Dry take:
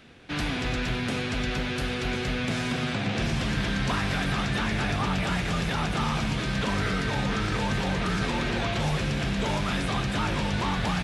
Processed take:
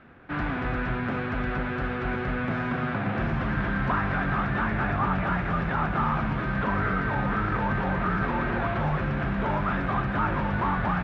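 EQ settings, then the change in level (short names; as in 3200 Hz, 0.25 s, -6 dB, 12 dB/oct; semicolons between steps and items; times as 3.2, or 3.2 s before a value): synth low-pass 1400 Hz, resonance Q 1.8; notch 460 Hz, Q 13; 0.0 dB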